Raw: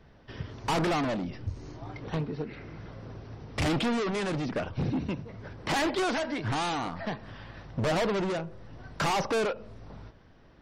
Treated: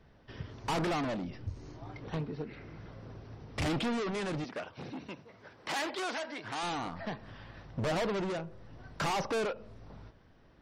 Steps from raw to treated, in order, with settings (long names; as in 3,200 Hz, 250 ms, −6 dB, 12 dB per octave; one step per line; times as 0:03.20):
0:04.44–0:06.63: high-pass filter 610 Hz 6 dB per octave
level −4.5 dB